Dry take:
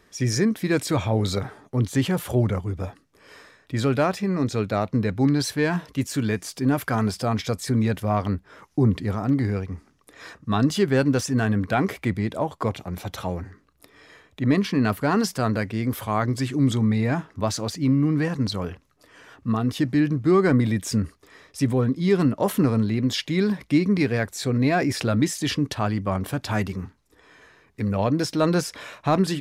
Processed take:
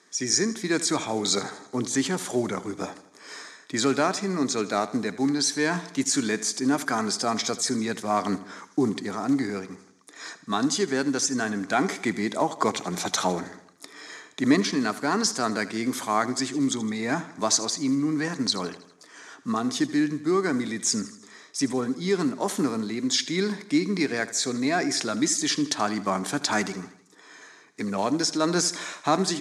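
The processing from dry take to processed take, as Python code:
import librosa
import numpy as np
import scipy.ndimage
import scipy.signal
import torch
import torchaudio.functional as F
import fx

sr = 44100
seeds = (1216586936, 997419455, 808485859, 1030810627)

p1 = fx.block_float(x, sr, bits=7)
p2 = fx.high_shelf(p1, sr, hz=3500.0, db=8.5)
p3 = fx.rider(p2, sr, range_db=10, speed_s=0.5)
p4 = fx.cabinet(p3, sr, low_hz=200.0, low_slope=24, high_hz=8800.0, hz=(220.0, 530.0, 2800.0, 6500.0), db=(-4, -8, -9, 5))
y = p4 + fx.echo_feedback(p4, sr, ms=80, feedback_pct=53, wet_db=-16.0, dry=0)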